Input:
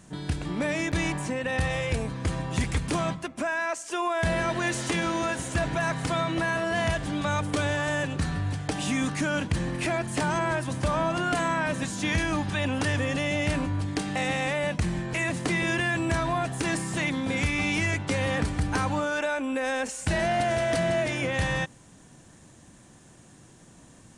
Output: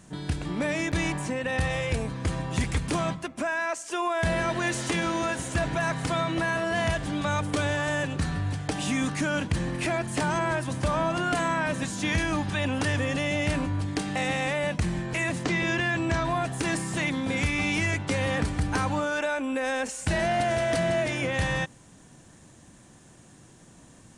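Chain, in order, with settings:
0:15.43–0:16.25: low-pass filter 7,200 Hz 24 dB per octave

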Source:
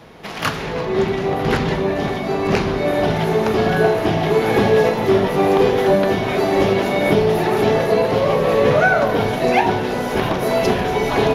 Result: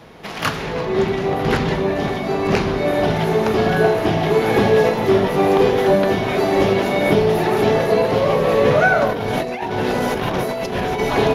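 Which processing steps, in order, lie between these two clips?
0:09.10–0:11.00: compressor whose output falls as the input rises −22 dBFS, ratio −1

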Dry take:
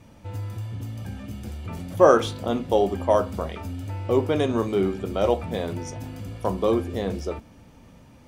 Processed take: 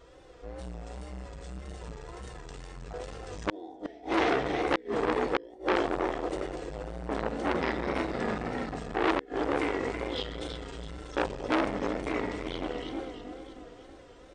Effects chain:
repeating echo 185 ms, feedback 51%, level −5.5 dB
wrong playback speed 78 rpm record played at 45 rpm
comb filter 4 ms, depth 49%
multi-tap delay 48/127/216 ms −14.5/−13/−11 dB
tape wow and flutter 87 cents
low shelf with overshoot 300 Hz −8.5 dB, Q 3
gate with flip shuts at −9 dBFS, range −31 dB
dynamic equaliser 2,700 Hz, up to +7 dB, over −48 dBFS, Q 1
saturating transformer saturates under 2,000 Hz

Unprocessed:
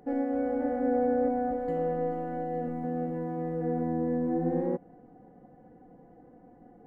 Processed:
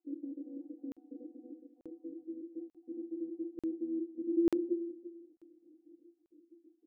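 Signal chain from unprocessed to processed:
time-frequency cells dropped at random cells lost 52%
flat-topped band-pass 330 Hz, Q 7.2
repeating echo 342 ms, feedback 23%, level −14.5 dB
on a send at −10.5 dB: convolution reverb RT60 0.40 s, pre-delay 6 ms
on the sum: regular buffer underruns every 0.89 s, samples 2,048, zero, from 0:00.92
level +5 dB

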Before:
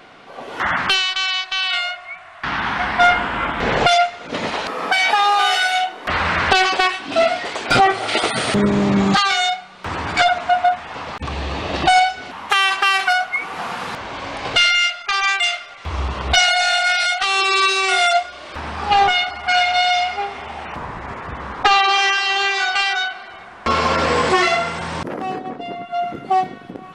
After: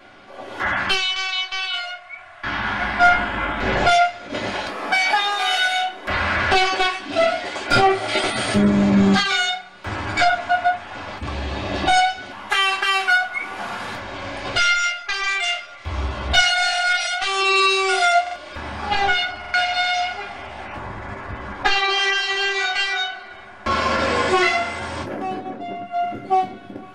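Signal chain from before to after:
0:01.65–0:02.13: tuned comb filter 65 Hz, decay 0.16 s, harmonics all, mix 60%
convolution reverb RT60 0.20 s, pre-delay 3 ms, DRR −3 dB
buffer that repeats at 0:18.22/0:19.40, samples 2,048, times 2
level −7 dB

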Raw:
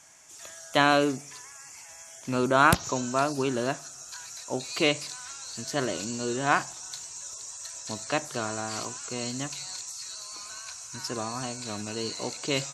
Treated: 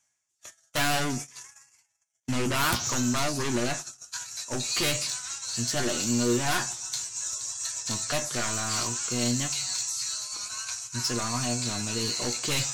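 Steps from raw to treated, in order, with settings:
in parallel at −8 dB: sine wavefolder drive 17 dB, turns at −8.5 dBFS
on the sum: parametric band 540 Hz −6.5 dB 2.4 octaves
tuned comb filter 120 Hz, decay 0.18 s, harmonics all, mix 80%
noise gate −33 dBFS, range −48 dB
reversed playback
upward compression, threshold −33 dBFS
reversed playback

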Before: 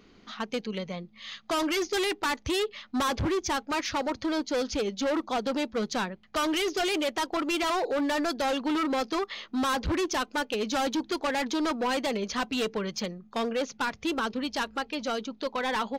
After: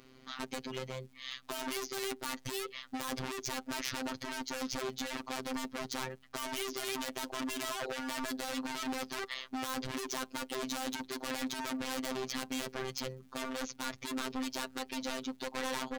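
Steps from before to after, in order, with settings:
wave folding −29.5 dBFS
surface crackle 450 per second −57 dBFS
phases set to zero 130 Hz

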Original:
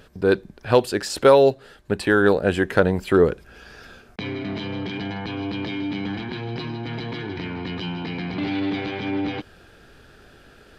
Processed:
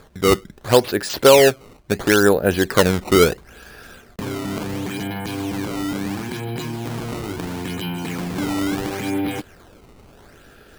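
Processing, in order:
sample-and-hold swept by an LFO 15×, swing 160% 0.73 Hz
level +2.5 dB

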